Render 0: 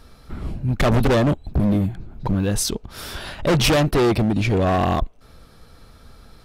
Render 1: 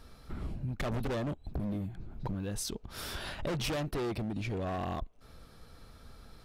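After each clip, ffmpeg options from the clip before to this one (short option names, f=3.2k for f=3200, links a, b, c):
-af "acompressor=threshold=-27dB:ratio=6,volume=-6.5dB"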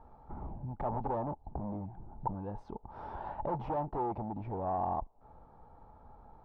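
-af "lowpass=f=870:t=q:w=9.2,volume=-5dB"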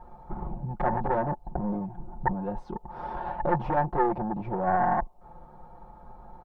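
-af "aecho=1:1:5.6:0.89,aeval=exprs='0.119*(cos(1*acos(clip(val(0)/0.119,-1,1)))-cos(1*PI/2))+0.0473*(cos(2*acos(clip(val(0)/0.119,-1,1)))-cos(2*PI/2))':c=same,volume=5.5dB"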